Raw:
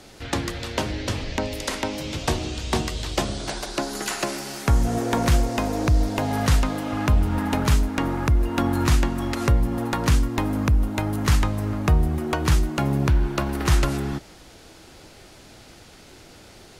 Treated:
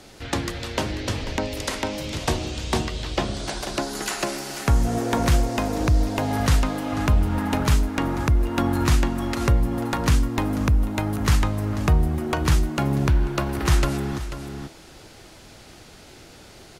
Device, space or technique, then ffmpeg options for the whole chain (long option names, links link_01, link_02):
ducked delay: -filter_complex "[0:a]asplit=3[link_01][link_02][link_03];[link_02]adelay=490,volume=-6dB[link_04];[link_03]apad=whole_len=762361[link_05];[link_04][link_05]sidechaincompress=threshold=-31dB:ratio=8:attack=38:release=637[link_06];[link_01][link_06]amix=inputs=2:normalize=0,asettb=1/sr,asplit=3[link_07][link_08][link_09];[link_07]atrim=end=2.854[link_10];[link_08]atrim=start=2.85:end=3.34,asetpts=PTS-STARTPTS,afade=type=in:duration=0.004:curve=qsin,afade=type=out:start_time=0.486:duration=0.004:curve=qsin,acrossover=split=5100[link_11][link_12];[link_12]acompressor=threshold=-46dB:ratio=4:attack=1:release=60[link_13];[link_11][link_13]amix=inputs=2:normalize=0[link_14];[link_09]atrim=start=3.336[link_15];[link_10][link_14]acrossfade=duration=0.004:curve1=hsin:curve2=qsin[link_16];[link_16][link_15]acrossfade=duration=0.004:curve1=qsin:curve2=hsin"